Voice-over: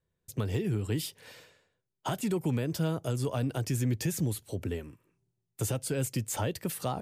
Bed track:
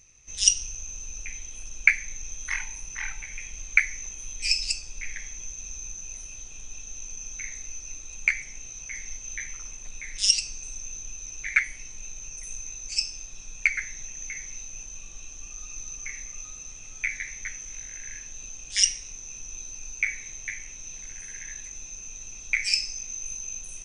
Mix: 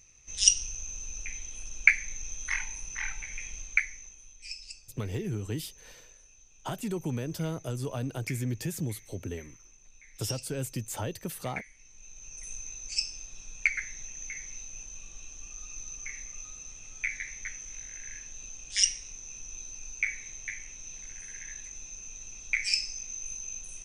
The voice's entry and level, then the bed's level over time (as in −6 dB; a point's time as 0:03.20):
4.60 s, −3.0 dB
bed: 0:03.53 −1.5 dB
0:04.39 −17 dB
0:11.74 −17 dB
0:12.44 −3.5 dB